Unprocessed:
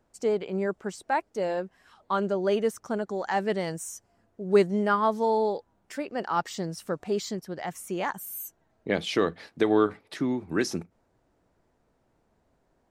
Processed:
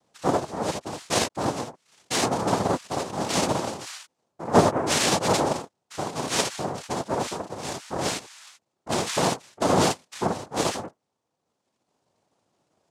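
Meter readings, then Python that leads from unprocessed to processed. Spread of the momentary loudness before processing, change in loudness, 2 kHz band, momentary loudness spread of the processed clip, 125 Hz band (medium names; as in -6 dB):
13 LU, +2.5 dB, +2.5 dB, 13 LU, +6.5 dB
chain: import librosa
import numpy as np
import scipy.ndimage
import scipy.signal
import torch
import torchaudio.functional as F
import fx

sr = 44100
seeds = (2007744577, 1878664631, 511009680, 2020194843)

y = fx.dereverb_blind(x, sr, rt60_s=1.6)
y = fx.room_early_taps(y, sr, ms=(34, 60, 78), db=(-4.0, -4.0, -5.0))
y = fx.noise_vocoder(y, sr, seeds[0], bands=2)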